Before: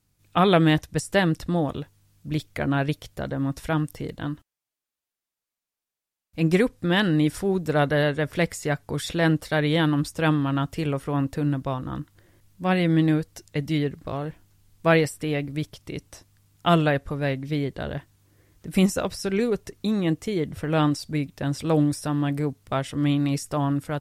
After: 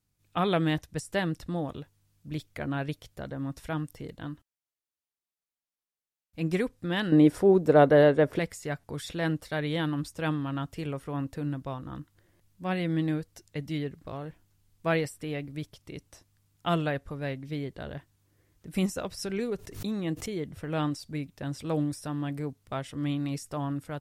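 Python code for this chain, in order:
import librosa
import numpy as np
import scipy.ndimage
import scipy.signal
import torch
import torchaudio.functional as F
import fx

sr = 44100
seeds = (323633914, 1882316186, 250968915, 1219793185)

y = fx.peak_eq(x, sr, hz=470.0, db=13.5, octaves=2.8, at=(7.12, 8.39))
y = fx.buffer_glitch(y, sr, at_s=(8.8, 12.36), block=512, repeats=2)
y = fx.pre_swell(y, sr, db_per_s=100.0, at=(19.17, 20.42))
y = F.gain(torch.from_numpy(y), -8.0).numpy()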